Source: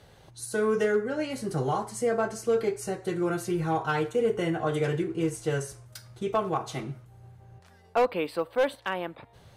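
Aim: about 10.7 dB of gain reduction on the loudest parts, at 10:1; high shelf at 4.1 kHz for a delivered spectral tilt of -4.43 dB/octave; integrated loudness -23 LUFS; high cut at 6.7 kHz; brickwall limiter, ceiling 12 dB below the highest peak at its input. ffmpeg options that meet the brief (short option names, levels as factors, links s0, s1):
-af "lowpass=6700,highshelf=f=4100:g=9,acompressor=threshold=0.0282:ratio=10,volume=6.68,alimiter=limit=0.211:level=0:latency=1"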